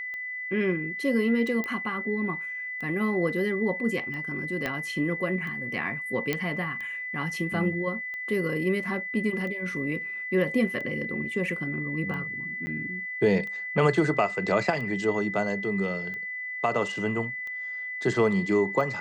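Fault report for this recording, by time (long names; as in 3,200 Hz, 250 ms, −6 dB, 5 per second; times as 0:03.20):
scratch tick 45 rpm −27 dBFS
whistle 2,000 Hz −32 dBFS
0:01.64: click −18 dBFS
0:04.66: click −15 dBFS
0:06.33: click −12 dBFS
0:12.66–0:12.67: drop-out 10 ms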